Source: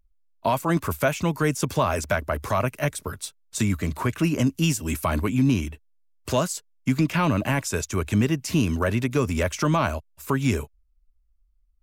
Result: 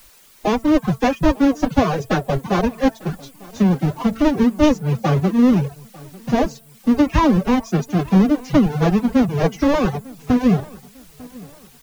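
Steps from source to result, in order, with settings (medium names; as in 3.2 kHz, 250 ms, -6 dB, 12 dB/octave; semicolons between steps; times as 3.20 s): square wave that keeps the level; elliptic low-pass 6.5 kHz; tilt shelf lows +7.5 dB, about 1.2 kHz; de-hum 122.4 Hz, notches 14; formant-preserving pitch shift +10.5 st; in parallel at -8 dB: word length cut 6-bit, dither triangular; on the sum: flange 1.5 Hz, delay 2.9 ms, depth 2.8 ms, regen -78%; reverb removal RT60 0.53 s; on a send: feedback delay 898 ms, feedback 39%, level -22.5 dB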